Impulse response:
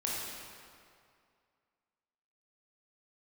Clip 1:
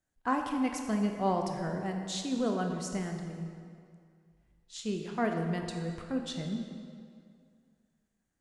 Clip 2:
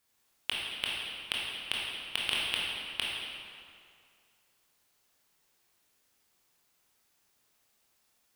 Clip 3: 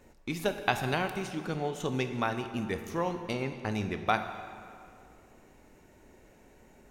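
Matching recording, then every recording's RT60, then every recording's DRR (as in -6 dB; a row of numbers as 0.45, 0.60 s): 2; 2.3, 2.3, 2.3 s; 3.5, -5.5, 7.5 dB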